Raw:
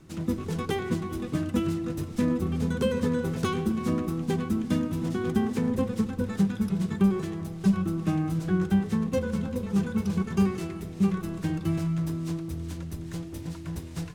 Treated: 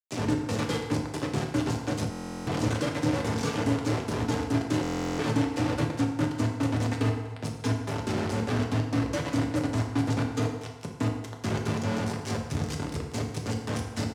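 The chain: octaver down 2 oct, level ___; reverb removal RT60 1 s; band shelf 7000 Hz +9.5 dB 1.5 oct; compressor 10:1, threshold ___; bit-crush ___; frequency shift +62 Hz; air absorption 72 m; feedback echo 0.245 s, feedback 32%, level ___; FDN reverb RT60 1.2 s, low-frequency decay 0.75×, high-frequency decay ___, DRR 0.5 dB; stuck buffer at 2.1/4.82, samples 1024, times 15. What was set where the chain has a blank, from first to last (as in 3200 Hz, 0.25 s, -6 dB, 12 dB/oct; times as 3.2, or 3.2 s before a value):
+3 dB, -27 dBFS, 5-bit, -19 dB, 0.65×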